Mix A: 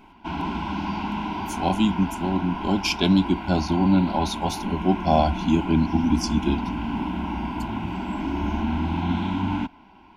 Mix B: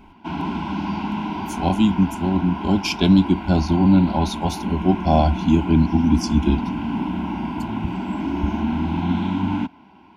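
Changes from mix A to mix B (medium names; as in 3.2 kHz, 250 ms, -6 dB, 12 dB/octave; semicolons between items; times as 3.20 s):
background: add high-pass 120 Hz 12 dB/octave; master: add bass shelf 260 Hz +7.5 dB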